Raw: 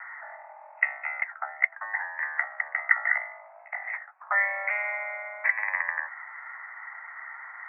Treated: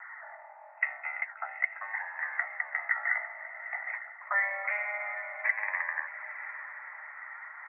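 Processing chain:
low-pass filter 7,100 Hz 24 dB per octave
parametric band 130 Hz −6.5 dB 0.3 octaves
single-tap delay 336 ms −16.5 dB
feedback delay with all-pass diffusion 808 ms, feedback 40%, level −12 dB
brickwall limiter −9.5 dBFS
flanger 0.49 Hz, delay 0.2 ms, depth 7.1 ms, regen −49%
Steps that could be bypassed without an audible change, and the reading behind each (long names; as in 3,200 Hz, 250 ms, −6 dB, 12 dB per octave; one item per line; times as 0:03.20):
low-pass filter 7,100 Hz: nothing at its input above 2,600 Hz
parametric band 130 Hz: nothing at its input below 540 Hz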